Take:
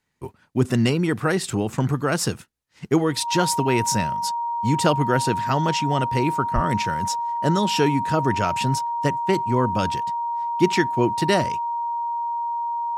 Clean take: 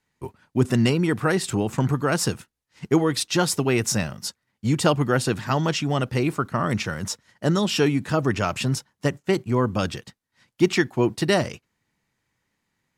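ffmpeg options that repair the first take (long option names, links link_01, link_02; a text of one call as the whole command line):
ffmpeg -i in.wav -filter_complex "[0:a]bandreject=frequency=940:width=30,asplit=3[link_01][link_02][link_03];[link_01]afade=type=out:start_time=6.54:duration=0.02[link_04];[link_02]highpass=frequency=140:width=0.5412,highpass=frequency=140:width=1.3066,afade=type=in:start_time=6.54:duration=0.02,afade=type=out:start_time=6.66:duration=0.02[link_05];[link_03]afade=type=in:start_time=6.66:duration=0.02[link_06];[link_04][link_05][link_06]amix=inputs=3:normalize=0" out.wav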